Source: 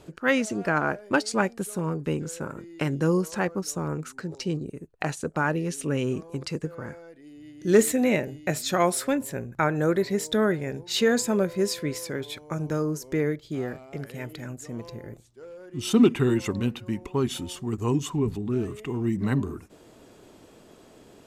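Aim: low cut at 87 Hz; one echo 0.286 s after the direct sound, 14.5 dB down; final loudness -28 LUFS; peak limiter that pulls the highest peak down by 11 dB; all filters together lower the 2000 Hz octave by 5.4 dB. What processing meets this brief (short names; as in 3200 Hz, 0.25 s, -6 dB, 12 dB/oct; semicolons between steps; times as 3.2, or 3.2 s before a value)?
HPF 87 Hz; bell 2000 Hz -7.5 dB; limiter -18.5 dBFS; echo 0.286 s -14.5 dB; gain +2 dB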